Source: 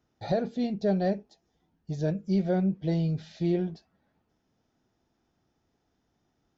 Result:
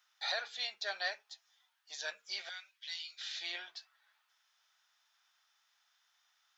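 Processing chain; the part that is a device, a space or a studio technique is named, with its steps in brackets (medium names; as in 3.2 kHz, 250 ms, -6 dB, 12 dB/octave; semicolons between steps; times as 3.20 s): 2.49–3.21 s: Bessel high-pass 2.9 kHz, order 2; headphones lying on a table (high-pass 1.2 kHz 24 dB/octave; peaking EQ 3.5 kHz +4.5 dB 0.46 oct); trim +8 dB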